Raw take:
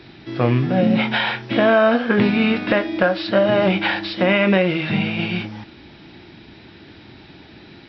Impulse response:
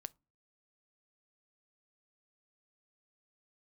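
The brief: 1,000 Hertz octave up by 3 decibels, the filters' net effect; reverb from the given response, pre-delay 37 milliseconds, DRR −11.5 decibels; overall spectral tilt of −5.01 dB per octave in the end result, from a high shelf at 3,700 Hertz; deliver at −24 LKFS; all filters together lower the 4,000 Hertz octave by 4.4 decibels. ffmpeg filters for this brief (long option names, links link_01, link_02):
-filter_complex "[0:a]equalizer=frequency=1000:width_type=o:gain=4.5,highshelf=frequency=3700:gain=3.5,equalizer=frequency=4000:width_type=o:gain=-9,asplit=2[link_01][link_02];[1:a]atrim=start_sample=2205,adelay=37[link_03];[link_02][link_03]afir=irnorm=-1:irlink=0,volume=16dB[link_04];[link_01][link_04]amix=inputs=2:normalize=0,volume=-18dB"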